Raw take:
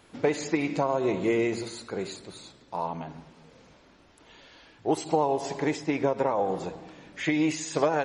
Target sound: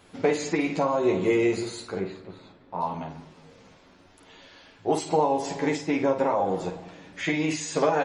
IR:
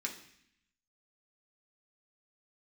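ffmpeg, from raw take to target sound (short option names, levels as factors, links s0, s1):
-filter_complex "[0:a]asettb=1/sr,asplit=3[s0][s1][s2];[s0]atrim=end=1.994[s3];[s1]atrim=start=1.99:end=2.81,asetpts=PTS-STARTPTS,afade=t=in:d=0.004:c=qsin,afade=t=out:st=0.816:d=0.004:c=qsin,lowpass=2000[s4];[s2]atrim=start=2.806[s5];[s3][s4]acrossfade=d=0.004:c1=hsin:c2=qsin[s6];[s6][s5]acrossfade=d=0.004:c1=qsin:c2=hsin,aecho=1:1:11|51:0.668|0.447"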